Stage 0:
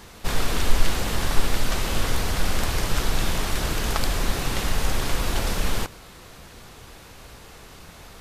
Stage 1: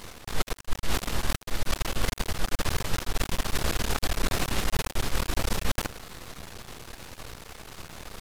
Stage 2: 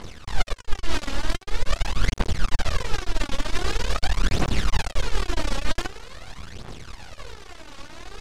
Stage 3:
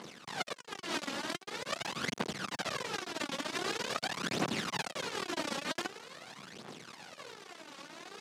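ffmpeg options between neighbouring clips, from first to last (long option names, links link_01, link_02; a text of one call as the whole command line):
ffmpeg -i in.wav -af "aeval=exprs='max(val(0),0)':channel_layout=same,areverse,acompressor=threshold=-26dB:ratio=16,areverse,volume=6dB" out.wav
ffmpeg -i in.wav -af "lowpass=6400,aphaser=in_gain=1:out_gain=1:delay=3.7:decay=0.6:speed=0.45:type=triangular" out.wav
ffmpeg -i in.wav -af "highpass=frequency=170:width=0.5412,highpass=frequency=170:width=1.3066,volume=-5.5dB" out.wav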